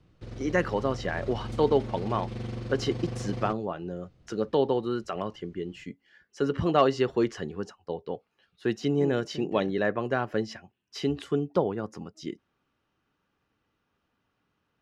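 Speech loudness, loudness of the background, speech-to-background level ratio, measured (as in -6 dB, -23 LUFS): -29.5 LUFS, -37.5 LUFS, 8.0 dB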